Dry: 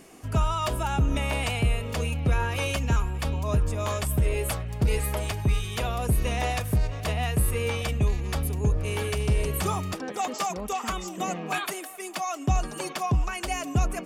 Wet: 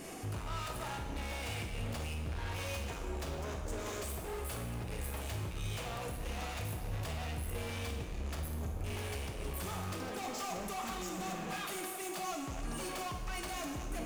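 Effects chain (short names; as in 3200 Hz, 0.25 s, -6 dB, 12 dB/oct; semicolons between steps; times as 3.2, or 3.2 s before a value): 2.86–4.39 fifteen-band EQ 100 Hz -7 dB, 400 Hz +12 dB, 6300 Hz +6 dB; compressor, threshold -28 dBFS, peak gain reduction 10.5 dB; hard clip -39 dBFS, distortion -5 dB; flutter echo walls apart 8.9 m, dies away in 0.25 s; limiter -43.5 dBFS, peak gain reduction 7 dB; plate-style reverb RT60 1.4 s, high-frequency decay 0.95×, DRR 2.5 dB; gain +5.5 dB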